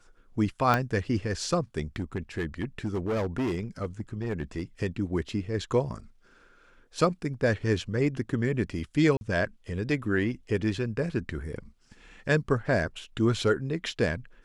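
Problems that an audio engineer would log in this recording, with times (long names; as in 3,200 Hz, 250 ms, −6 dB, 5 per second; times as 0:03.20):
0:00.74: click −11 dBFS
0:01.96–0:04.62: clipping −25 dBFS
0:09.17–0:09.21: drop-out 41 ms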